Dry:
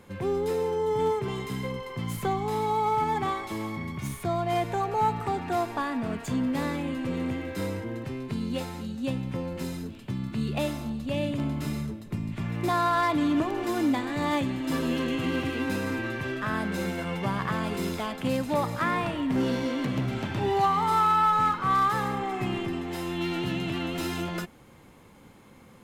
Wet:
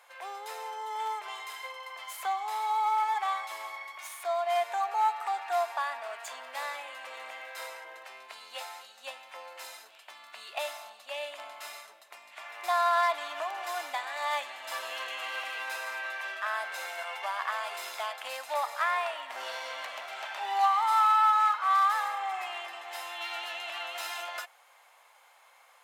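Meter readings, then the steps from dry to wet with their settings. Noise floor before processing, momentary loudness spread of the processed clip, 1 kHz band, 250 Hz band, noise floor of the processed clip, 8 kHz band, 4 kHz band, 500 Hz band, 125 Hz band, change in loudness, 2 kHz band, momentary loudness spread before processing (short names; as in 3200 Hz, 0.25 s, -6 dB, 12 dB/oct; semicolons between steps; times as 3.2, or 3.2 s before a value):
-52 dBFS, 19 LU, -0.5 dB, under -35 dB, -59 dBFS, -1.0 dB, -0.5 dB, -8.0 dB, under -40 dB, -3.0 dB, 0.0 dB, 10 LU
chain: Chebyshev high-pass 660 Hz, order 4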